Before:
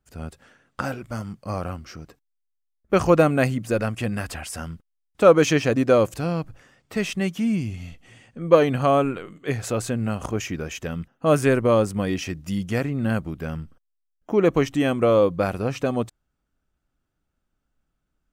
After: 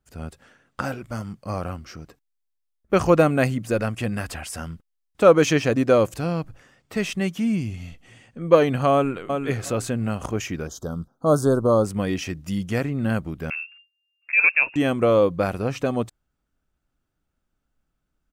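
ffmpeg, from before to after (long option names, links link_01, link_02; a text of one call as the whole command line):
ffmpeg -i in.wav -filter_complex "[0:a]asplit=2[link_01][link_02];[link_02]afade=type=in:start_time=8.93:duration=0.01,afade=type=out:start_time=9.39:duration=0.01,aecho=0:1:360|720|1080:0.530884|0.0796327|0.0119449[link_03];[link_01][link_03]amix=inputs=2:normalize=0,asettb=1/sr,asplit=3[link_04][link_05][link_06];[link_04]atrim=end=10.674[link_07];[link_05]atrim=start=10.67:end=11.85,asetpts=PTS-STARTPTS,afade=type=in:duration=0.004:curve=qsin,afade=type=out:start_time=1.176:duration=0.004:curve=qsin,asuperstop=centerf=2300:order=8:qfactor=0.99[link_08];[link_06]atrim=start=11.846[link_09];[link_07][link_08]acrossfade=duration=0.004:curve1=hsin:curve2=qsin[link_10];[link_10][link_09]acrossfade=duration=0.004:curve1=qsin:curve2=hsin,asettb=1/sr,asplit=3[link_11][link_12][link_13];[link_11]atrim=end=13.504[link_14];[link_12]atrim=start=13.5:end=14.76,asetpts=PTS-STARTPTS,afade=type=in:duration=0.004:curve=qsin,afade=type=out:start_time=1.256:duration=0.004:curve=qsin,lowpass=frequency=2400:width_type=q:width=0.5098,lowpass=frequency=2400:width_type=q:width=0.6013,lowpass=frequency=2400:width_type=q:width=0.9,lowpass=frequency=2400:width_type=q:width=2.563,afreqshift=-2800[link_15];[link_13]atrim=start=14.756[link_16];[link_14][link_15]acrossfade=duration=0.004:curve1=hsin:curve2=qsin[link_17];[link_17][link_16]acrossfade=duration=0.004:curve1=qsin:curve2=hsin" out.wav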